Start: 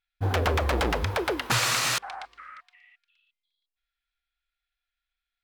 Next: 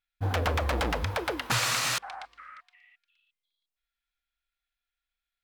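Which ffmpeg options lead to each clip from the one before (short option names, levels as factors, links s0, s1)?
-af "equalizer=f=390:w=7.9:g=-9.5,volume=0.75"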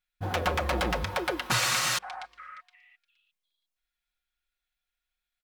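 -af "aecho=1:1:5.5:0.53"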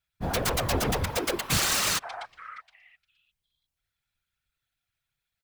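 -filter_complex "[0:a]acrossover=split=430|5500[s0][s1][s2];[s1]aeval=exprs='(mod(13.3*val(0)+1,2)-1)/13.3':c=same[s3];[s0][s3][s2]amix=inputs=3:normalize=0,afftfilt=real='hypot(re,im)*cos(2*PI*random(0))':imag='hypot(re,im)*sin(2*PI*random(1))':win_size=512:overlap=0.75,volume=2.51"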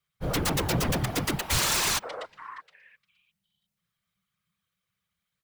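-af "afreqshift=-210,asoftclip=type=tanh:threshold=0.15,volume=1.12"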